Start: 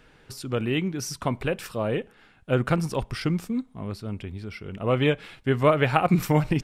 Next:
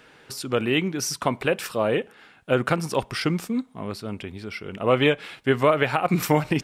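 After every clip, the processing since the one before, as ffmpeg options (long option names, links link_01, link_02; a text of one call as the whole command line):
ffmpeg -i in.wav -af "highpass=frequency=310:poles=1,alimiter=limit=-13.5dB:level=0:latency=1:release=256,volume=6dB" out.wav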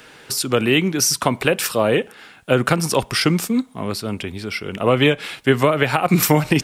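ffmpeg -i in.wav -filter_complex "[0:a]highshelf=frequency=4400:gain=8.5,acrossover=split=300[link_01][link_02];[link_02]acompressor=threshold=-20dB:ratio=6[link_03];[link_01][link_03]amix=inputs=2:normalize=0,volume=6.5dB" out.wav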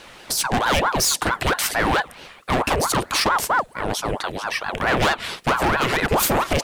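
ffmpeg -i in.wav -af "volume=17dB,asoftclip=hard,volume=-17dB,aeval=exprs='val(0)*sin(2*PI*750*n/s+750*0.7/4.5*sin(2*PI*4.5*n/s))':channel_layout=same,volume=4dB" out.wav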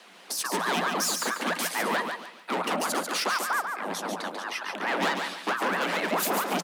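ffmpeg -i in.wav -af "afreqshift=170,aecho=1:1:142|284|426|568:0.531|0.159|0.0478|0.0143,volume=-8.5dB" out.wav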